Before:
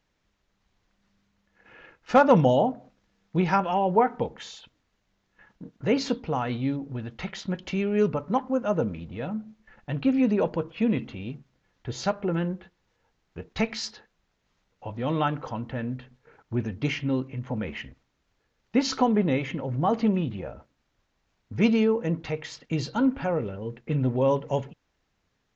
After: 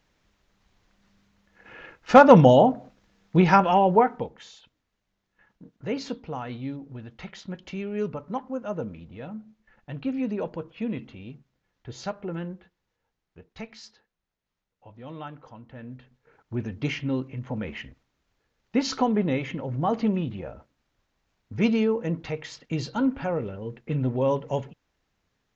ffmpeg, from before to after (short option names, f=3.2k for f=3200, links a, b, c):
-af "volume=17.5dB,afade=t=out:st=3.75:d=0.55:silence=0.266073,afade=t=out:st=12.44:d=1.22:silence=0.446684,afade=t=in:st=15.66:d=1.14:silence=0.251189"